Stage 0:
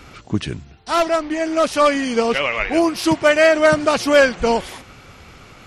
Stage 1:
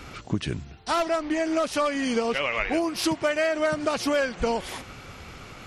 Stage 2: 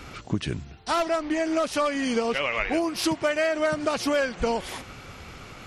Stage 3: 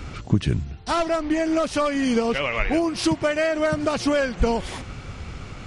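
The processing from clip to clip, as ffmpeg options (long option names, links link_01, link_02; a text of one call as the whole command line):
ffmpeg -i in.wav -af "acompressor=threshold=-22dB:ratio=6" out.wav
ffmpeg -i in.wav -af anull out.wav
ffmpeg -i in.wav -af "lowshelf=frequency=200:gain=11.5,aresample=22050,aresample=44100,volume=1dB" out.wav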